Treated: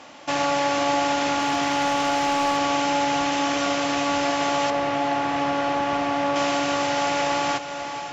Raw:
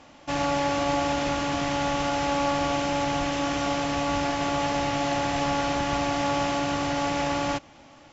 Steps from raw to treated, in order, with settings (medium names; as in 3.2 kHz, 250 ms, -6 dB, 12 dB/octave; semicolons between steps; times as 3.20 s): high-pass 400 Hz 6 dB/octave; on a send: echo that smears into a reverb 512 ms, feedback 42%, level -12 dB; 1.39–2.57 s: on the sum: overload inside the chain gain 20.5 dB; 4.70–6.36 s: low-pass 1.8 kHz 6 dB/octave; in parallel at +0.5 dB: compression, threshold -34 dBFS, peak gain reduction 11.5 dB; on the sum: trim +2 dB